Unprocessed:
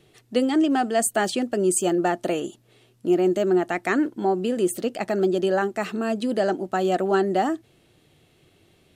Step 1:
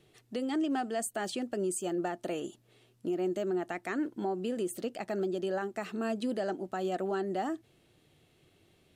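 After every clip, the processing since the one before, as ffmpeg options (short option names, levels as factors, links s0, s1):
-af "alimiter=limit=0.126:level=0:latency=1:release=261,volume=0.473"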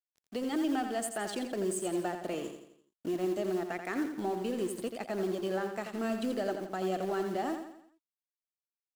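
-filter_complex "[0:a]acrossover=split=470|1600[s0][s1][s2];[s0]acrusher=bits=5:mode=log:mix=0:aa=0.000001[s3];[s3][s1][s2]amix=inputs=3:normalize=0,aeval=exprs='sgn(val(0))*max(abs(val(0))-0.00355,0)':c=same,aecho=1:1:85|170|255|340|425:0.422|0.194|0.0892|0.041|0.0189"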